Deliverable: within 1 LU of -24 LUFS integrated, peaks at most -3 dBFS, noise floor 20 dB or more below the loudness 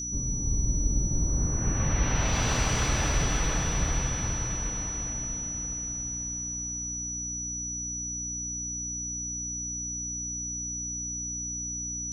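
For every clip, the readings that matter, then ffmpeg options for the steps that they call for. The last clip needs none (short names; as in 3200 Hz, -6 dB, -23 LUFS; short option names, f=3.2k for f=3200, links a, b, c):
hum 60 Hz; harmonics up to 300 Hz; hum level -38 dBFS; steady tone 5900 Hz; tone level -32 dBFS; loudness -29.5 LUFS; peak -13.0 dBFS; loudness target -24.0 LUFS
-> -af "bandreject=f=60:t=h:w=4,bandreject=f=120:t=h:w=4,bandreject=f=180:t=h:w=4,bandreject=f=240:t=h:w=4,bandreject=f=300:t=h:w=4"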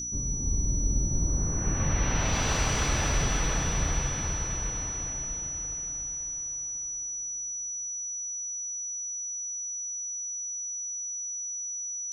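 hum none; steady tone 5900 Hz; tone level -32 dBFS
-> -af "bandreject=f=5.9k:w=30"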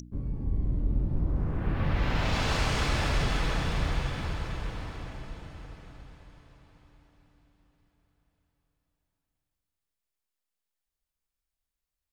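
steady tone none; loudness -30.5 LUFS; peak -16.0 dBFS; loudness target -24.0 LUFS
-> -af "volume=6.5dB"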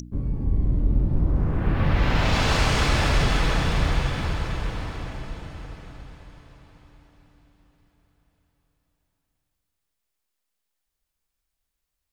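loudness -24.0 LUFS; peak -9.5 dBFS; noise floor -81 dBFS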